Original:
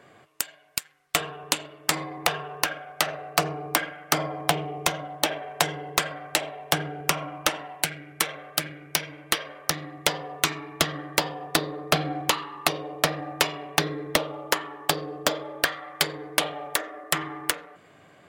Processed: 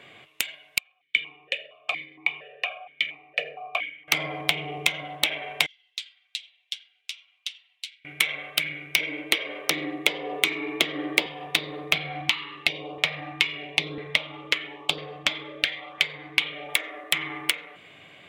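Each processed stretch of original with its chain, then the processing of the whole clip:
0.78–4.08 s: comb 1.7 ms, depth 58% + stepped vowel filter 4.3 Hz
5.66–8.05 s: flange 1.1 Hz, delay 4.4 ms, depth 7.3 ms, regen -35% + ladder band-pass 5.3 kHz, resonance 40%
8.98–11.26 s: high-pass 170 Hz 24 dB/octave + peaking EQ 370 Hz +12.5 dB 1.5 oct
11.98–16.69 s: distance through air 54 m + LFO notch saw up 1 Hz 230–2200 Hz
whole clip: high-order bell 2.8 kHz +13 dB 1.1 oct; compression 6:1, threshold -21 dBFS; dynamic bell 2.2 kHz, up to +7 dB, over -44 dBFS, Q 6.4

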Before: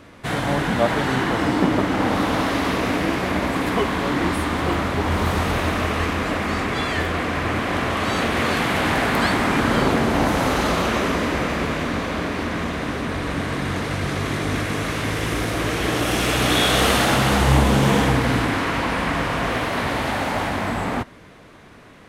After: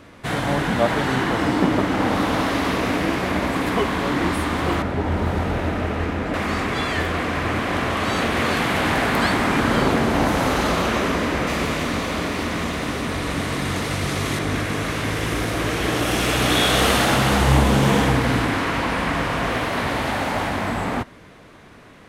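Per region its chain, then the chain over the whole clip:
4.82–6.34 s: treble shelf 2 kHz -10.5 dB + band-stop 1.1 kHz, Q 7.4 + loudspeaker Doppler distortion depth 0.13 ms
11.47–14.39 s: treble shelf 3.8 kHz +7.5 dB + band-stop 1.6 kHz, Q 17
whole clip: none

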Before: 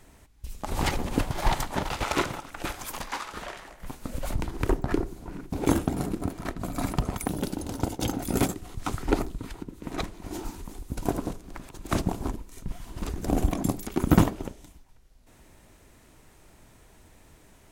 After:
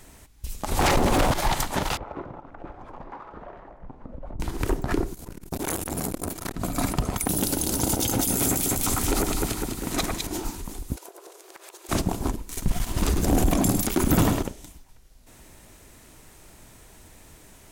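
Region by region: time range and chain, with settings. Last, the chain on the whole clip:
0.79–1.34 s: waveshaping leveller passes 3 + peaking EQ 640 Hz +7.5 dB 2.9 oct + loudspeaker Doppler distortion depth 0.57 ms
1.97–4.40 s: Chebyshev low-pass 790 Hz + delay 884 ms -21.5 dB + compression 2:1, threshold -44 dBFS
5.14–6.56 s: treble shelf 5.9 kHz +11 dB + doubling 12 ms -14 dB + transformer saturation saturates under 1.6 kHz
7.29–10.27 s: treble shelf 4.5 kHz +11 dB + echo whose repeats swap between lows and highs 101 ms, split 2.2 kHz, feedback 75%, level -3.5 dB
10.96–11.89 s: brick-wall FIR high-pass 330 Hz + compression 8:1, threshold -46 dBFS
12.49–14.43 s: waveshaping leveller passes 2 + delay 104 ms -12 dB
whole clip: treble shelf 4.1 kHz +6.5 dB; peak limiter -17 dBFS; trim +4 dB

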